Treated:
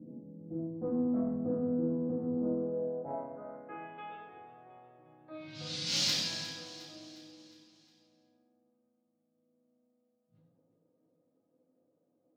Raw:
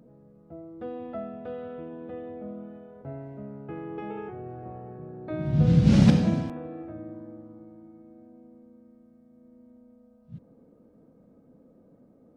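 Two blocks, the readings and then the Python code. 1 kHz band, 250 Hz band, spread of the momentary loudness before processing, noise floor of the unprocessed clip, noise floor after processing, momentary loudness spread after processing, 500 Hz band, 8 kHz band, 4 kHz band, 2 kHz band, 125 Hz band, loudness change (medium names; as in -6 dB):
-5.0 dB, -8.5 dB, 23 LU, -59 dBFS, -78 dBFS, 20 LU, -2.0 dB, no reading, +9.5 dB, -2.0 dB, -20.0 dB, -7.5 dB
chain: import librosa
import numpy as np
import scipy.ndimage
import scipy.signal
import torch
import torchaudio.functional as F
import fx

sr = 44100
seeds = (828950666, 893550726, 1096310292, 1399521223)

p1 = scipy.signal.sosfilt(scipy.signal.butter(2, 100.0, 'highpass', fs=sr, output='sos'), x)
p2 = fx.env_lowpass(p1, sr, base_hz=540.0, full_db=-21.0)
p3 = fx.high_shelf(p2, sr, hz=5800.0, db=10.5)
p4 = fx.rider(p3, sr, range_db=4, speed_s=0.5)
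p5 = p3 + F.gain(torch.from_numpy(p4), -0.5).numpy()
p6 = fx.filter_sweep_bandpass(p5, sr, from_hz=240.0, to_hz=4600.0, start_s=2.32, end_s=4.19, q=2.4)
p7 = 10.0 ** (-25.0 / 20.0) * np.tanh(p6 / 10.0 ** (-25.0 / 20.0))
p8 = p7 + fx.echo_feedback(p7, sr, ms=358, feedback_pct=51, wet_db=-14.5, dry=0)
y = fx.rev_fdn(p8, sr, rt60_s=0.85, lf_ratio=1.2, hf_ratio=0.95, size_ms=57.0, drr_db=-4.5)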